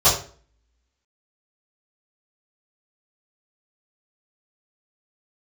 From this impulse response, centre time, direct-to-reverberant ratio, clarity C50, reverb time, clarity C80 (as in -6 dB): 33 ms, -16.5 dB, 6.5 dB, 0.45 s, 10.5 dB